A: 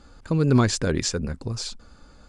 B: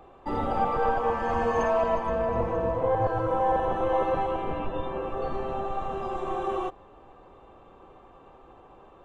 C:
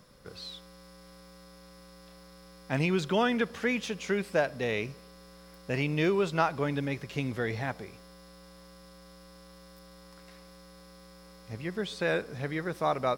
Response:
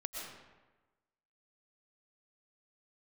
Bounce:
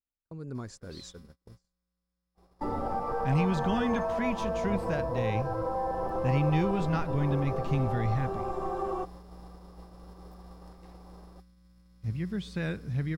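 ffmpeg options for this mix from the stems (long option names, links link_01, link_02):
-filter_complex "[0:a]volume=-20dB[link_01];[1:a]adelay=2350,volume=-0.5dB[link_02];[2:a]asubboost=boost=8.5:cutoff=180,adelay=550,volume=-6.5dB[link_03];[link_01][link_02]amix=inputs=2:normalize=0,equalizer=frequency=3000:width=1.3:gain=-11.5,acompressor=threshold=-28dB:ratio=6,volume=0dB[link_04];[link_03][link_04]amix=inputs=2:normalize=0,agate=range=-32dB:threshold=-46dB:ratio=16:detection=peak"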